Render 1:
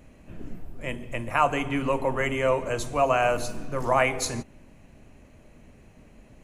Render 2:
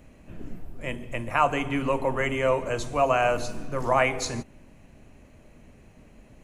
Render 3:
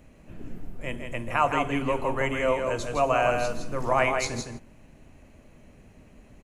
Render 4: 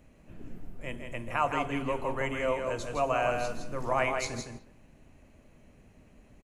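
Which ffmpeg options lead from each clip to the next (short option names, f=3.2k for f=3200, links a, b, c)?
-filter_complex "[0:a]acrossover=split=8300[a][b];[b]acompressor=threshold=-56dB:ratio=4:attack=1:release=60[c];[a][c]amix=inputs=2:normalize=0"
-af "aecho=1:1:163:0.531,volume=-1.5dB"
-filter_complex "[0:a]asplit=2[a][b];[b]adelay=200,highpass=300,lowpass=3.4k,asoftclip=type=hard:threshold=-19.5dB,volume=-18dB[c];[a][c]amix=inputs=2:normalize=0,volume=-5dB"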